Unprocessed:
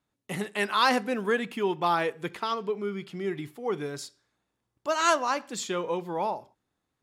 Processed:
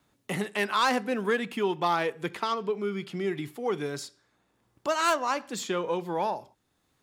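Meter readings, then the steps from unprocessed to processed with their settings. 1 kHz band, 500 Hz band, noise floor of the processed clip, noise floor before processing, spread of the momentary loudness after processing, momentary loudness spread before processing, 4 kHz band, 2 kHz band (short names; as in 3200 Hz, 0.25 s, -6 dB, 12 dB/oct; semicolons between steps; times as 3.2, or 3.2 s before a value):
-1.0 dB, 0.0 dB, -73 dBFS, -82 dBFS, 9 LU, 12 LU, -1.0 dB, -1.0 dB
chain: self-modulated delay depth 0.051 ms; three-band squash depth 40%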